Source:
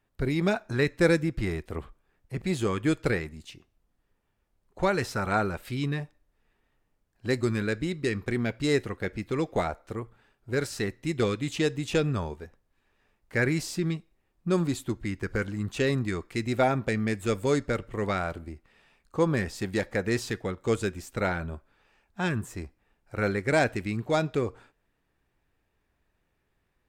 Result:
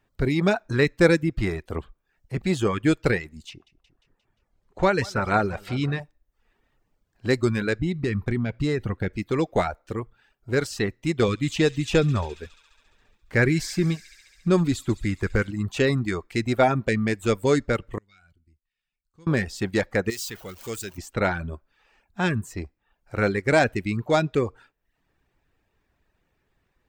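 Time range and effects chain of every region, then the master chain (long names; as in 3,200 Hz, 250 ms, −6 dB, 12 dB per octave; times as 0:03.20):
0:03.49–0:06.00: high-shelf EQ 11,000 Hz −10 dB + repeating echo 176 ms, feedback 55%, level −15.5 dB
0:07.79–0:09.13: bass and treble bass +8 dB, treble −4 dB + downward compressor 3 to 1, threshold −26 dBFS
0:11.28–0:15.51: low-shelf EQ 88 Hz +8 dB + delay with a high-pass on its return 69 ms, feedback 78%, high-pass 2,100 Hz, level −10 dB
0:17.98–0:19.27: guitar amp tone stack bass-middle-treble 6-0-2 + tuned comb filter 730 Hz, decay 0.16 s, mix 70%
0:20.10–0:20.98: converter with a step at zero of −34 dBFS + first-order pre-emphasis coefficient 0.8
whole clip: reverb reduction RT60 0.57 s; parametric band 11,000 Hz −9 dB 0.46 octaves; level +5 dB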